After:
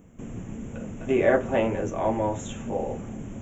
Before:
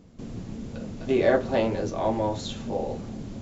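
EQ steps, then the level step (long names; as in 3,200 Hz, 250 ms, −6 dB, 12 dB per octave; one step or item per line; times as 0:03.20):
Butterworth band-reject 4,500 Hz, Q 0.95
high-shelf EQ 3,000 Hz +9.5 dB
0.0 dB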